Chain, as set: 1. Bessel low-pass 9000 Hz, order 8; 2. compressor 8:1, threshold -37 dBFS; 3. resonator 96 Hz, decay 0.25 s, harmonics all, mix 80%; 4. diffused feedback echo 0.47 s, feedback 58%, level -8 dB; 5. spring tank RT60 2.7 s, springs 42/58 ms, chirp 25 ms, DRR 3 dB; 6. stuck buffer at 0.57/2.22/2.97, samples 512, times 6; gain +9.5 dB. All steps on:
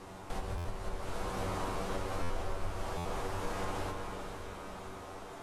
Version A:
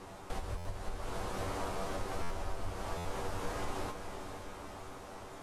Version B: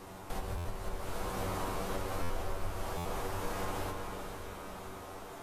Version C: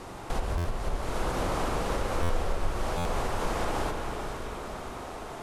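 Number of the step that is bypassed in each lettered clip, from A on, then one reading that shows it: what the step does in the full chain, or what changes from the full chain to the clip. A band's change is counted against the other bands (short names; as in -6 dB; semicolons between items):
5, 8 kHz band +1.5 dB; 1, 8 kHz band +2.5 dB; 3, loudness change +7.0 LU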